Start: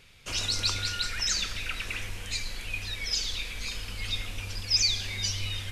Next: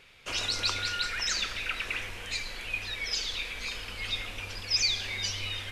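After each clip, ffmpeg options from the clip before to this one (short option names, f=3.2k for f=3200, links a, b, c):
-af "bass=f=250:g=-10,treble=f=4k:g=-8,volume=3dB"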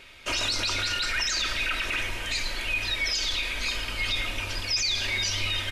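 -af "aecho=1:1:3.2:0.47,alimiter=level_in=1dB:limit=-24dB:level=0:latency=1:release=17,volume=-1dB,volume=6.5dB"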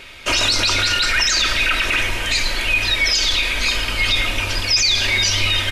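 -af "acontrast=30,volume=5dB"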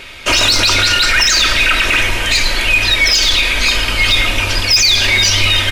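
-af "asoftclip=type=hard:threshold=-11.5dB,volume=6dB"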